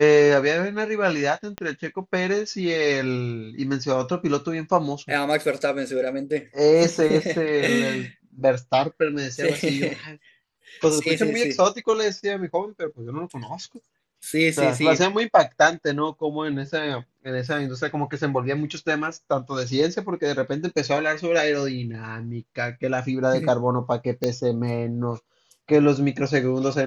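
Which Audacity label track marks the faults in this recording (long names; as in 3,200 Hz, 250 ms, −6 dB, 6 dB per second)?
1.580000	1.580000	click −16 dBFS
24.240000	24.240000	click −10 dBFS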